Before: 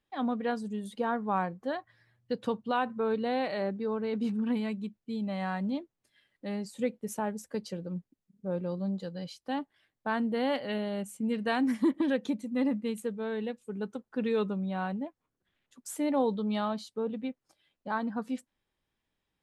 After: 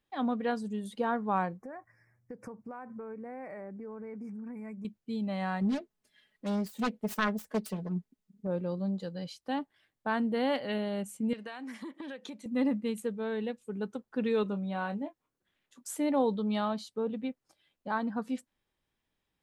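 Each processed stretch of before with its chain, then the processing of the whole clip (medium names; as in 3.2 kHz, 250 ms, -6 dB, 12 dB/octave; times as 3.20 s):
1.58–4.85 s: elliptic band-stop 2.3–5.3 kHz + compression, threshold -40 dBFS
5.61–8.47 s: self-modulated delay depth 0.62 ms + comb 4.7 ms, depth 64%
11.33–12.46 s: frequency weighting A + compression, threshold -38 dBFS
14.43–15.95 s: bass shelf 140 Hz -7 dB + doubling 25 ms -9 dB
whole clip: none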